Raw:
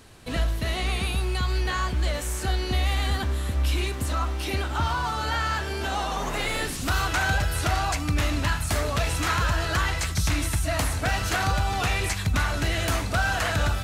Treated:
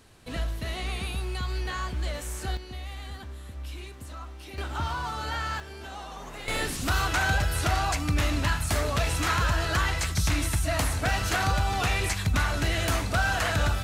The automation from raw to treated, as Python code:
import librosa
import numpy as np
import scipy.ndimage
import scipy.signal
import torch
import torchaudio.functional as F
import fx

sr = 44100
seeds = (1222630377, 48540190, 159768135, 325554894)

y = fx.gain(x, sr, db=fx.steps((0.0, -5.5), (2.57, -14.0), (4.58, -5.0), (5.6, -12.0), (6.48, -1.0)))